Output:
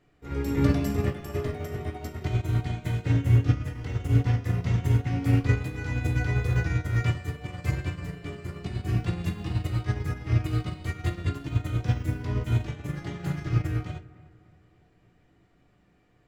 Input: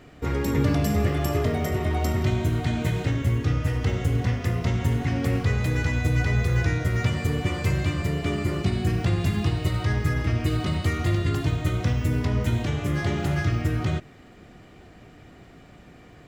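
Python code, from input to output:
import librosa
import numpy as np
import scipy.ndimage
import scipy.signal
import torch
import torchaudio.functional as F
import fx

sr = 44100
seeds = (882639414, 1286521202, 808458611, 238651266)

p1 = fx.comb(x, sr, ms=6.3, depth=0.35, at=(12.78, 13.65))
p2 = p1 + fx.echo_bbd(p1, sr, ms=296, stages=4096, feedback_pct=47, wet_db=-11.5, dry=0)
p3 = fx.room_shoebox(p2, sr, seeds[0], volume_m3=32.0, walls='mixed', distance_m=0.35)
y = fx.upward_expand(p3, sr, threshold_db=-26.0, expansion=2.5)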